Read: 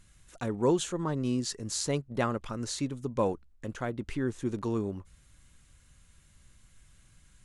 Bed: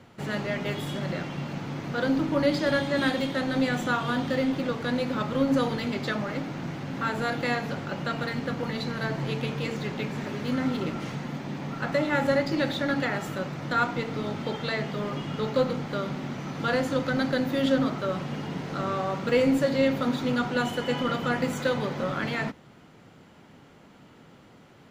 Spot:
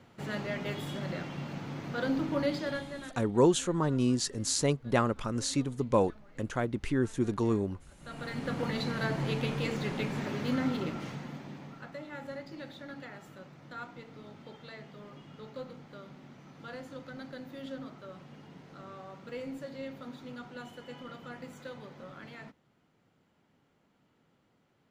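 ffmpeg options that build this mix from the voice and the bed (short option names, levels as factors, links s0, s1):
-filter_complex "[0:a]adelay=2750,volume=1.33[s0];[1:a]volume=10.6,afade=t=out:st=2.35:d=0.81:silence=0.0749894,afade=t=in:st=7.98:d=0.64:silence=0.0501187,afade=t=out:st=10.4:d=1.52:silence=0.158489[s1];[s0][s1]amix=inputs=2:normalize=0"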